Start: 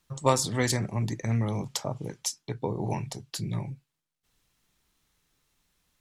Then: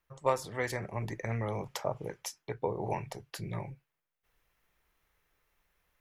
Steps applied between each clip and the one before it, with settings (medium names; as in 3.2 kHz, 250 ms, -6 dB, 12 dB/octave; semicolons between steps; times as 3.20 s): ten-band graphic EQ 125 Hz -6 dB, 250 Hz -9 dB, 500 Hz +4 dB, 2 kHz +4 dB, 4 kHz -8 dB, 8 kHz -11 dB; gain riding within 3 dB 0.5 s; trim -3 dB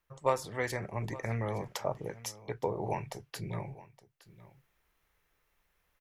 delay 867 ms -18.5 dB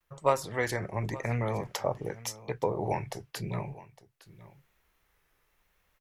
vibrato 0.9 Hz 66 cents; trim +3.5 dB